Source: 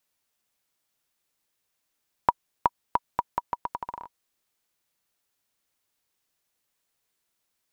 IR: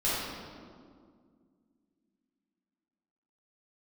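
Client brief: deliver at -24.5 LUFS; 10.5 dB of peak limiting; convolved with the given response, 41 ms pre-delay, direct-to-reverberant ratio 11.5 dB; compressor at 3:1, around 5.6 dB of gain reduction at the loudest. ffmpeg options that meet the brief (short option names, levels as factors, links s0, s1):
-filter_complex "[0:a]acompressor=threshold=0.0447:ratio=3,alimiter=limit=0.119:level=0:latency=1,asplit=2[s0][s1];[1:a]atrim=start_sample=2205,adelay=41[s2];[s1][s2]afir=irnorm=-1:irlink=0,volume=0.0794[s3];[s0][s3]amix=inputs=2:normalize=0,volume=7.5"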